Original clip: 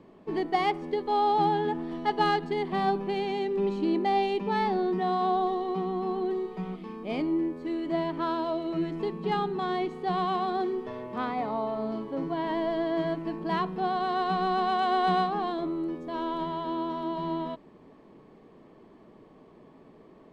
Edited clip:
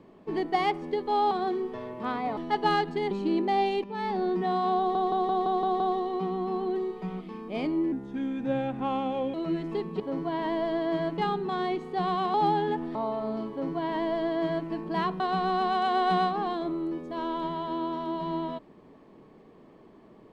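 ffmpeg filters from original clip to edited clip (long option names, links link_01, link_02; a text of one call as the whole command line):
ffmpeg -i in.wav -filter_complex "[0:a]asplit=18[link_01][link_02][link_03][link_04][link_05][link_06][link_07][link_08][link_09][link_10][link_11][link_12][link_13][link_14][link_15][link_16][link_17][link_18];[link_01]atrim=end=1.312[link_19];[link_02]atrim=start=10.438:end=11.502[link_20];[link_03]atrim=start=1.918:end=2.662[link_21];[link_04]atrim=start=3.678:end=4.41,asetpts=PTS-STARTPTS,afade=type=out:start_time=0.728:duration=0.004:curve=hsin:silence=0.251189[link_22];[link_05]atrim=start=4.41:end=5.522,asetpts=PTS-STARTPTS,afade=type=in:duration=0.43:silence=0.251189[link_23];[link_06]atrim=start=5.348:end=5.522[link_24];[link_07]atrim=start=5.348:end=5.522[link_25];[link_08]atrim=start=5.348:end=5.522[link_26];[link_09]atrim=start=5.348:end=5.522[link_27];[link_10]atrim=start=5.348:end=5.522[link_28];[link_11]atrim=start=5.348:end=7.474[link_29];[link_12]atrim=start=7.47:end=8.62,asetpts=PTS-STARTPTS,asetrate=35721,aresample=44100,atrim=end_sample=62611,asetpts=PTS-STARTPTS[link_30];[link_13]atrim=start=8.616:end=9.282[link_31];[link_14]atrim=start=12.048:end=13.232[link_32];[link_15]atrim=start=9.278:end=10.442[link_33];[link_16]atrim=start=1.308:end=1.922[link_34];[link_17]atrim=start=11.498:end=13.752[link_35];[link_18]atrim=start=14.168[link_36];[link_19][link_20]acrossfade=duration=0.004:curve1=hsin:curve2=hsin[link_37];[link_37][link_21]acrossfade=duration=0.004:curve1=hsin:curve2=hsin[link_38];[link_22][link_23]concat=n=2:v=0:a=1[link_39];[link_38][link_39]acrossfade=duration=0.004:curve1=hsin:curve2=hsin[link_40];[link_40][link_24]acrossfade=duration=0.004:curve1=hsin:curve2=hsin[link_41];[link_41][link_25]acrossfade=duration=0.004:curve1=hsin:curve2=hsin[link_42];[link_42][link_26]acrossfade=duration=0.004:curve1=hsin:curve2=hsin[link_43];[link_43][link_27]acrossfade=duration=0.004:curve1=hsin:curve2=hsin[link_44];[link_44][link_28]acrossfade=duration=0.004:curve1=hsin:curve2=hsin[link_45];[link_45][link_29]acrossfade=duration=0.004:curve1=hsin:curve2=hsin[link_46];[link_46][link_30]acrossfade=duration=0.004:curve1=hsin:curve2=hsin[link_47];[link_47][link_31]acrossfade=duration=0.004:curve1=hsin:curve2=hsin[link_48];[link_48][link_32]acrossfade=duration=0.004:curve1=hsin:curve2=hsin[link_49];[link_49][link_33]acrossfade=duration=0.004:curve1=hsin:curve2=hsin[link_50];[link_50][link_34]acrossfade=duration=0.004:curve1=hsin:curve2=hsin[link_51];[link_51][link_35]acrossfade=duration=0.004:curve1=hsin:curve2=hsin[link_52];[link_52][link_36]acrossfade=duration=0.004:curve1=hsin:curve2=hsin" out.wav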